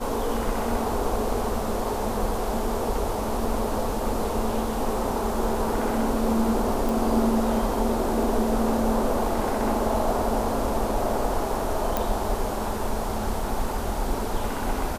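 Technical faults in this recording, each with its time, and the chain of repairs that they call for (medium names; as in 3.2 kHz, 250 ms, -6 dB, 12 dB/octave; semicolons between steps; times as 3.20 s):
6.89 s: pop
11.97 s: pop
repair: de-click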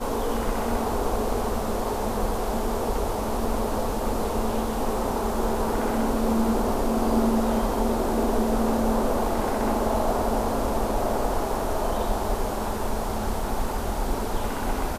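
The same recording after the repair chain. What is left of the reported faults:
nothing left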